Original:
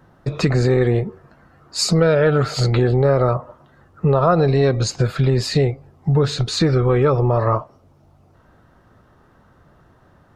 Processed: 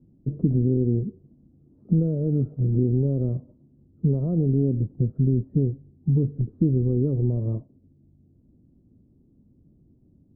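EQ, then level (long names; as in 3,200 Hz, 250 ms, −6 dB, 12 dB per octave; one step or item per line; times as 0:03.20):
transistor ladder low-pass 320 Hz, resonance 45%
+3.0 dB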